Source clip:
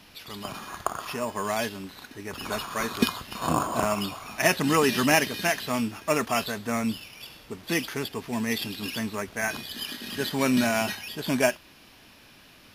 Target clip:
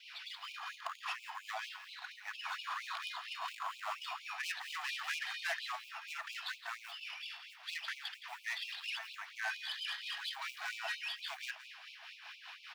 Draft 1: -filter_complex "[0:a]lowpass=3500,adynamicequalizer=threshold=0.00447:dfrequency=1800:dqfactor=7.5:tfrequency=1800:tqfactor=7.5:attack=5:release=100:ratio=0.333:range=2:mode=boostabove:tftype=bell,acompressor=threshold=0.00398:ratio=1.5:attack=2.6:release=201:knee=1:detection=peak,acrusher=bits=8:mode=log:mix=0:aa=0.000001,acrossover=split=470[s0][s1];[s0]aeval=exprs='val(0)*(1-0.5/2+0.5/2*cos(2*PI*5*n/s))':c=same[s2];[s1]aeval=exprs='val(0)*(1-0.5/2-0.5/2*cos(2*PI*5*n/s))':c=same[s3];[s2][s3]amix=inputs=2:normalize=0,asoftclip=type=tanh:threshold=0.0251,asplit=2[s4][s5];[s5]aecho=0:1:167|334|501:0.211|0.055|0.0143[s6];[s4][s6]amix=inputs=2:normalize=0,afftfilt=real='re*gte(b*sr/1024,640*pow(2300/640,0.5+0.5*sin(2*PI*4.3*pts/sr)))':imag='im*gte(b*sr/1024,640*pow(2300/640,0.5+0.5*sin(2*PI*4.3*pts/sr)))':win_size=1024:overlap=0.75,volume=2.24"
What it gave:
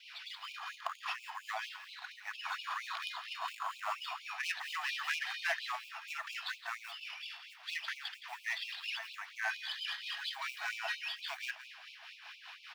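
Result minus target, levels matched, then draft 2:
saturation: distortion -5 dB
-filter_complex "[0:a]lowpass=3500,adynamicequalizer=threshold=0.00447:dfrequency=1800:dqfactor=7.5:tfrequency=1800:tqfactor=7.5:attack=5:release=100:ratio=0.333:range=2:mode=boostabove:tftype=bell,acompressor=threshold=0.00398:ratio=1.5:attack=2.6:release=201:knee=1:detection=peak,acrusher=bits=8:mode=log:mix=0:aa=0.000001,acrossover=split=470[s0][s1];[s0]aeval=exprs='val(0)*(1-0.5/2+0.5/2*cos(2*PI*5*n/s))':c=same[s2];[s1]aeval=exprs='val(0)*(1-0.5/2-0.5/2*cos(2*PI*5*n/s))':c=same[s3];[s2][s3]amix=inputs=2:normalize=0,asoftclip=type=tanh:threshold=0.0126,asplit=2[s4][s5];[s5]aecho=0:1:167|334|501:0.211|0.055|0.0143[s6];[s4][s6]amix=inputs=2:normalize=0,afftfilt=real='re*gte(b*sr/1024,640*pow(2300/640,0.5+0.5*sin(2*PI*4.3*pts/sr)))':imag='im*gte(b*sr/1024,640*pow(2300/640,0.5+0.5*sin(2*PI*4.3*pts/sr)))':win_size=1024:overlap=0.75,volume=2.24"

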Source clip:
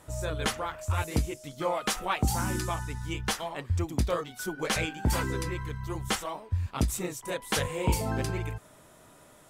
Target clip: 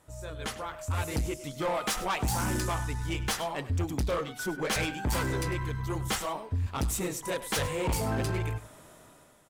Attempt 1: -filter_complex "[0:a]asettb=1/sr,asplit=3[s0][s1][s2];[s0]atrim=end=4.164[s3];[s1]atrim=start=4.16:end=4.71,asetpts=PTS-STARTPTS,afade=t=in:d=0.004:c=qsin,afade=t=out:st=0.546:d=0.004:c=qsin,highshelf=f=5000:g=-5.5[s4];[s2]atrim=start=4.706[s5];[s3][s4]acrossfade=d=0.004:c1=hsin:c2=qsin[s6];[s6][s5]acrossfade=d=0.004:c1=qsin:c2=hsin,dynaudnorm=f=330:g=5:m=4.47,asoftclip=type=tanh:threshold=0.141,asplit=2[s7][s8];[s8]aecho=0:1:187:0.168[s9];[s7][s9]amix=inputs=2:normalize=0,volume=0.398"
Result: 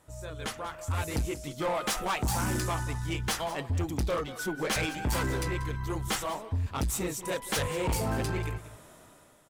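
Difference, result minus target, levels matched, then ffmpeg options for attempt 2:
echo 87 ms late
-filter_complex "[0:a]asettb=1/sr,asplit=3[s0][s1][s2];[s0]atrim=end=4.164[s3];[s1]atrim=start=4.16:end=4.71,asetpts=PTS-STARTPTS,afade=t=in:d=0.004:c=qsin,afade=t=out:st=0.546:d=0.004:c=qsin,highshelf=f=5000:g=-5.5[s4];[s2]atrim=start=4.706[s5];[s3][s4]acrossfade=d=0.004:c1=hsin:c2=qsin[s6];[s6][s5]acrossfade=d=0.004:c1=qsin:c2=hsin,dynaudnorm=f=330:g=5:m=4.47,asoftclip=type=tanh:threshold=0.141,asplit=2[s7][s8];[s8]aecho=0:1:100:0.168[s9];[s7][s9]amix=inputs=2:normalize=0,volume=0.398"

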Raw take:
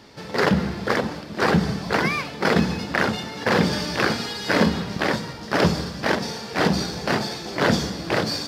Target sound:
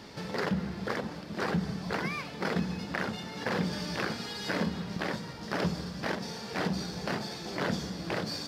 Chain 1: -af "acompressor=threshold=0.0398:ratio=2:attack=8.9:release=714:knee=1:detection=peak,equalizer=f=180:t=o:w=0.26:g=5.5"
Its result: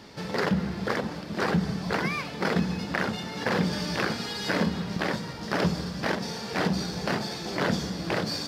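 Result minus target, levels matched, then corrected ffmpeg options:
compression: peak gain reduction -5 dB
-af "acompressor=threshold=0.0126:ratio=2:attack=8.9:release=714:knee=1:detection=peak,equalizer=f=180:t=o:w=0.26:g=5.5"

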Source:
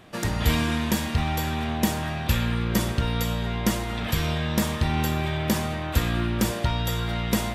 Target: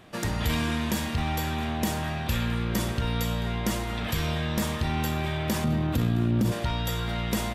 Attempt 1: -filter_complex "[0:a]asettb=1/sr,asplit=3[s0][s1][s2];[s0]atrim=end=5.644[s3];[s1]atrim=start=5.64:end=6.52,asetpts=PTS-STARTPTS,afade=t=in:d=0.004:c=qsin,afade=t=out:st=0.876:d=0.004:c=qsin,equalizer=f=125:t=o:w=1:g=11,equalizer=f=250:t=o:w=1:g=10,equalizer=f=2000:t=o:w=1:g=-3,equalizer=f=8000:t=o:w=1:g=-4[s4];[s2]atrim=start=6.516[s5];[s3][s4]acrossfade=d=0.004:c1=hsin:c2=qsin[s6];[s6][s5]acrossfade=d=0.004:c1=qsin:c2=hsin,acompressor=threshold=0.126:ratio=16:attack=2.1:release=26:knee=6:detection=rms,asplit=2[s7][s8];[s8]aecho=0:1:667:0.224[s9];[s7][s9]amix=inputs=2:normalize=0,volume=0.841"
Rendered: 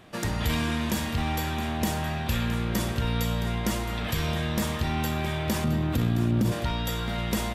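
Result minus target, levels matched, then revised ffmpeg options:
echo-to-direct +9.5 dB
-filter_complex "[0:a]asettb=1/sr,asplit=3[s0][s1][s2];[s0]atrim=end=5.644[s3];[s1]atrim=start=5.64:end=6.52,asetpts=PTS-STARTPTS,afade=t=in:d=0.004:c=qsin,afade=t=out:st=0.876:d=0.004:c=qsin,equalizer=f=125:t=o:w=1:g=11,equalizer=f=250:t=o:w=1:g=10,equalizer=f=2000:t=o:w=1:g=-3,equalizer=f=8000:t=o:w=1:g=-4[s4];[s2]atrim=start=6.516[s5];[s3][s4]acrossfade=d=0.004:c1=hsin:c2=qsin[s6];[s6][s5]acrossfade=d=0.004:c1=qsin:c2=hsin,acompressor=threshold=0.126:ratio=16:attack=2.1:release=26:knee=6:detection=rms,asplit=2[s7][s8];[s8]aecho=0:1:667:0.075[s9];[s7][s9]amix=inputs=2:normalize=0,volume=0.841"

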